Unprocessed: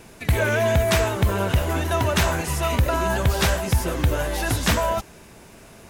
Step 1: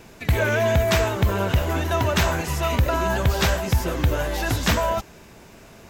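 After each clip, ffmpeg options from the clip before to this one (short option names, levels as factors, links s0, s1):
-af "equalizer=f=9700:t=o:w=0.26:g=-13"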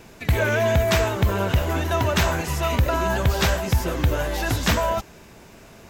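-af anull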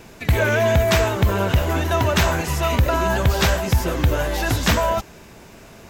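-af "acontrast=20,volume=0.794"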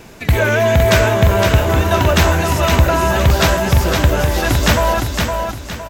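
-af "aecho=1:1:512|1024|1536|2048|2560:0.596|0.214|0.0772|0.0278|0.01,volume=1.58"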